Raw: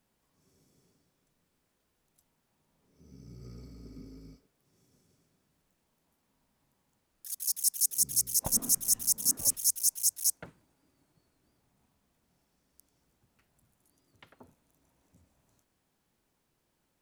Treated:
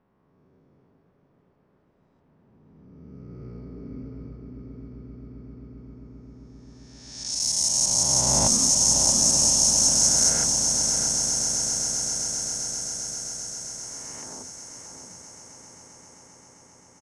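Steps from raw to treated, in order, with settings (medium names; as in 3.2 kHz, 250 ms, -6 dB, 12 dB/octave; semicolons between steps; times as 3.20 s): reverse spectral sustain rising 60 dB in 2.38 s; bass shelf 76 Hz -6 dB; delay 627 ms -7.5 dB; level-controlled noise filter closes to 1.3 kHz, open at -21.5 dBFS; low-pass 6.7 kHz 24 dB/octave; on a send: echo with a slow build-up 132 ms, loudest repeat 8, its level -13.5 dB; on the sum: trim +6.5 dB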